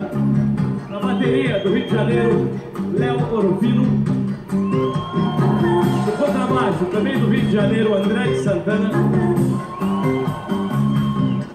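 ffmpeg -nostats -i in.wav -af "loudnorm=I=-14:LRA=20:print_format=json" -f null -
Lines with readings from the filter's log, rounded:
"input_i" : "-19.0",
"input_tp" : "-6.4",
"input_lra" : "1.2",
"input_thresh" : "-29.0",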